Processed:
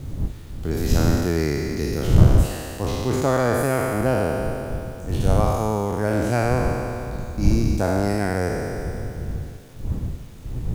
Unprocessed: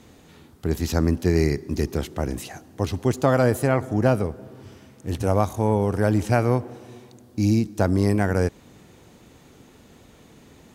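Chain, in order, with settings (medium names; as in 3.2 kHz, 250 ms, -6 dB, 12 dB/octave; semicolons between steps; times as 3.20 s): spectral sustain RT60 2.79 s; wind noise 100 Hz -20 dBFS; bit crusher 8-bit; trim -4 dB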